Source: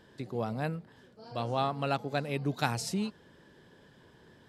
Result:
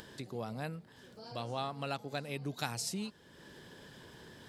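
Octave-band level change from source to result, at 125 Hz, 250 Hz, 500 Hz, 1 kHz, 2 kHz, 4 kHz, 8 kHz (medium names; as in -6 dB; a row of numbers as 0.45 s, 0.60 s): -7.0 dB, -7.0 dB, -7.0 dB, -7.5 dB, -5.5 dB, -2.0 dB, 0.0 dB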